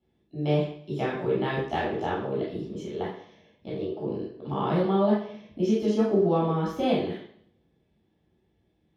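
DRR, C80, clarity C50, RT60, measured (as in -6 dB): -7.0 dB, 6.5 dB, 2.5 dB, 0.60 s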